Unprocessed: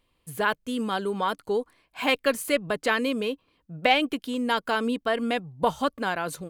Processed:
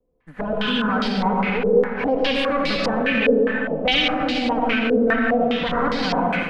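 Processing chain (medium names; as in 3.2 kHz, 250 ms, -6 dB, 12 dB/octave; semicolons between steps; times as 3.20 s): comb filter that takes the minimum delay 4 ms; peaking EQ 150 Hz +5.5 dB 0.7 oct; reverberation RT60 2.7 s, pre-delay 50 ms, DRR -2.5 dB; dynamic bell 910 Hz, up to -6 dB, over -39 dBFS, Q 1.8; peak limiter -18 dBFS, peak gain reduction 8.5 dB; level rider gain up to 4 dB; step-sequenced low-pass 4.9 Hz 470–4700 Hz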